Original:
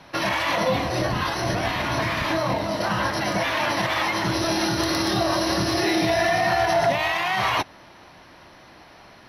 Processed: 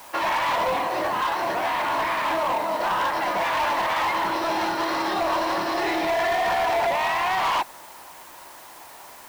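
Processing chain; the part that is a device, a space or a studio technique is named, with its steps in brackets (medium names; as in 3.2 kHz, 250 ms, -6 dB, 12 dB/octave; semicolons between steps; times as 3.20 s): drive-through speaker (band-pass 390–3000 Hz; peaking EQ 940 Hz +8 dB 0.54 oct; hard clipper -20 dBFS, distortion -11 dB; white noise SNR 23 dB)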